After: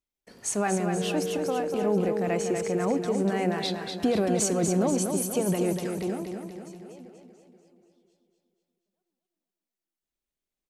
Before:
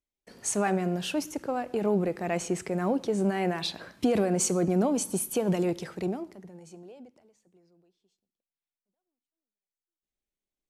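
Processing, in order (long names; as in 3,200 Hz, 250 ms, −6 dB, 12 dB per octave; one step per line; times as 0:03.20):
0:00.96–0:02.98: steady tone 460 Hz −31 dBFS
repeating echo 241 ms, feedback 53%, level −6 dB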